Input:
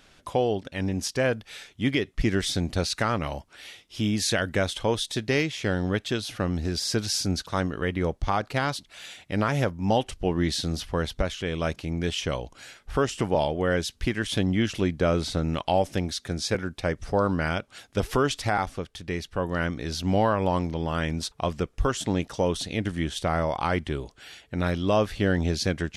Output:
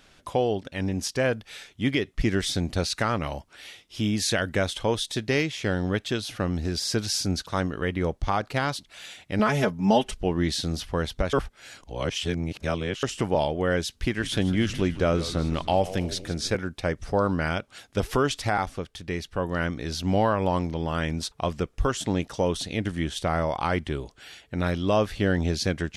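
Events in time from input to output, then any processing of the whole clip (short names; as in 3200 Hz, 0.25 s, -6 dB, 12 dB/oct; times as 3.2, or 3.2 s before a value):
9.39–10.21 comb 4.7 ms, depth 95%
11.33–13.03 reverse
13.91–16.52 frequency-shifting echo 0.157 s, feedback 59%, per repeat -87 Hz, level -14 dB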